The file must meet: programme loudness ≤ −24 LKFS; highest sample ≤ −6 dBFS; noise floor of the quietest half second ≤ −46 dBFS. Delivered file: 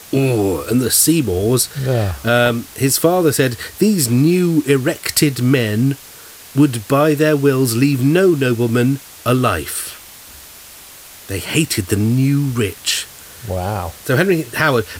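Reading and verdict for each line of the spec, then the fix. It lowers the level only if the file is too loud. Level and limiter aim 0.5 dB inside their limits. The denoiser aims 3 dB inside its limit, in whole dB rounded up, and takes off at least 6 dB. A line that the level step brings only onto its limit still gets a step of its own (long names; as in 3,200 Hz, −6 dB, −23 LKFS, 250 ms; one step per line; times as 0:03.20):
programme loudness −16.0 LKFS: out of spec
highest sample −1.5 dBFS: out of spec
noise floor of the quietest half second −39 dBFS: out of spec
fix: level −8.5 dB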